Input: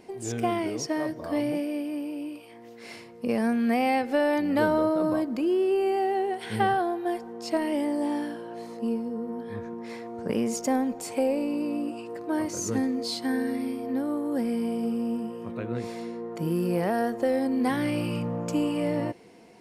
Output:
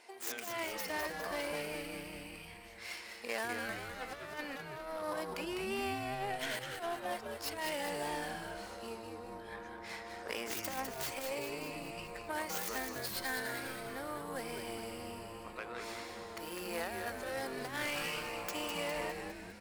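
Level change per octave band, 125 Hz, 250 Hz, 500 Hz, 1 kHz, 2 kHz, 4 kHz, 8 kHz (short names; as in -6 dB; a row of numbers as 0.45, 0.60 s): -14.5, -20.0, -13.0, -10.0, -2.5, -2.0, -5.0 dB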